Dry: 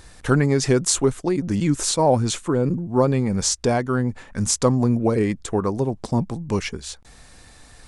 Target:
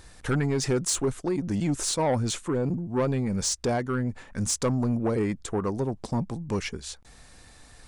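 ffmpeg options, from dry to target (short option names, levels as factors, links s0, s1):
-af "asoftclip=type=tanh:threshold=0.188,volume=0.631"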